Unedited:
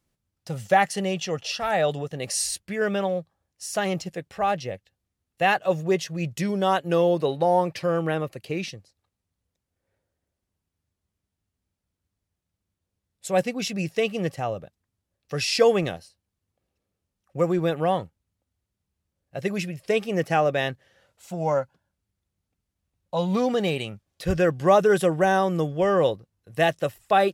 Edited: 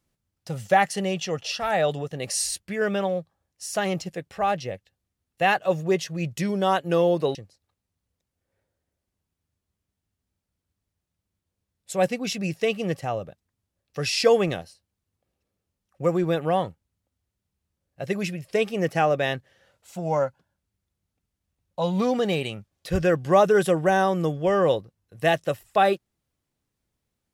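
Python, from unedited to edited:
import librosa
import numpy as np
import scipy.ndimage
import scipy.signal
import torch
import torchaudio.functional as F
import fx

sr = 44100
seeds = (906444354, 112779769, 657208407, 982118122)

y = fx.edit(x, sr, fx.cut(start_s=7.35, length_s=1.35), tone=tone)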